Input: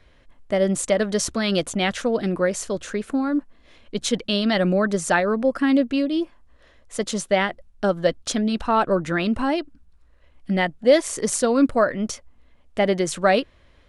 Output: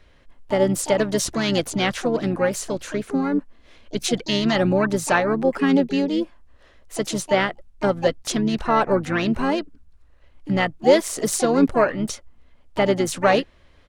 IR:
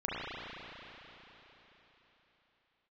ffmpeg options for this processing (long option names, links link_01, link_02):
-filter_complex "[0:a]asplit=3[link_01][link_02][link_03];[link_02]asetrate=29433,aresample=44100,atempo=1.49831,volume=-11dB[link_04];[link_03]asetrate=66075,aresample=44100,atempo=0.66742,volume=-12dB[link_05];[link_01][link_04][link_05]amix=inputs=3:normalize=0"